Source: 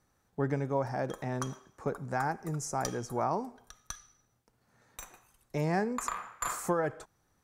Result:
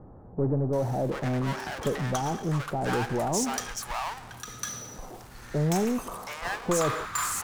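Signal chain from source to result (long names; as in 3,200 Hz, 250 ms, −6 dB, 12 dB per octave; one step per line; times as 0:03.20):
power curve on the samples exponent 0.5
multiband delay without the direct sound lows, highs 730 ms, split 870 Hz
highs frequency-modulated by the lows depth 0.14 ms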